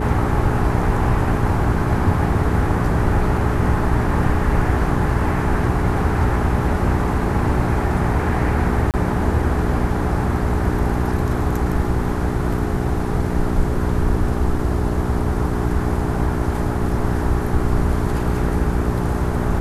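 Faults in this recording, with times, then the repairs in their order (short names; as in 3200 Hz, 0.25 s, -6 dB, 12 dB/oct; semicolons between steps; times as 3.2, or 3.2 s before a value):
hum 60 Hz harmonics 7 -23 dBFS
8.91–8.94 gap 28 ms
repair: de-hum 60 Hz, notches 7; interpolate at 8.91, 28 ms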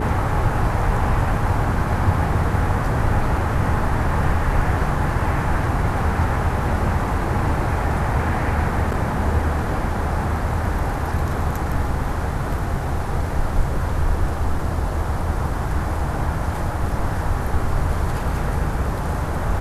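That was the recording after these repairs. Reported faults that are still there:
none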